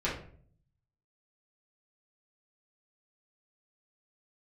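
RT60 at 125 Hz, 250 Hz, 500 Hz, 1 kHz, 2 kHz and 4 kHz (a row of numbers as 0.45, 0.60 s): 1.1, 0.75, 0.60, 0.45, 0.45, 0.35 s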